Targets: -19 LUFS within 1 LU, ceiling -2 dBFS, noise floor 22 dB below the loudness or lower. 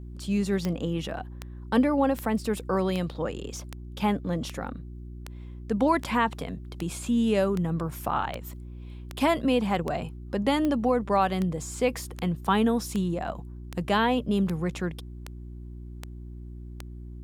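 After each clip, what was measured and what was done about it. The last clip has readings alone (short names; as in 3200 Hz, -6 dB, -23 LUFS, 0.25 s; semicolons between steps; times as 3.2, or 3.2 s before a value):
clicks 22; hum 60 Hz; harmonics up to 360 Hz; hum level -38 dBFS; loudness -27.5 LUFS; peak -11.0 dBFS; loudness target -19.0 LUFS
-> de-click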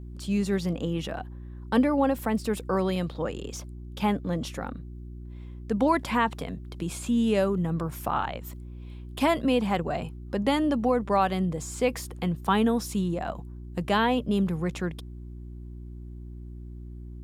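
clicks 0; hum 60 Hz; harmonics up to 360 Hz; hum level -38 dBFS
-> de-hum 60 Hz, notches 6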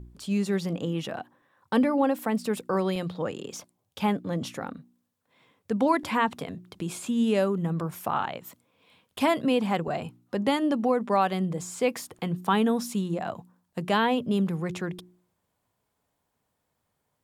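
hum none; loudness -27.5 LUFS; peak -11.0 dBFS; loudness target -19.0 LUFS
-> gain +8.5 dB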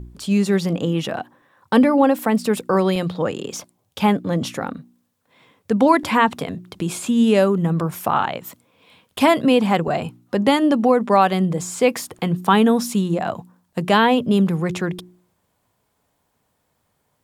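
loudness -19.0 LUFS; peak -2.5 dBFS; noise floor -70 dBFS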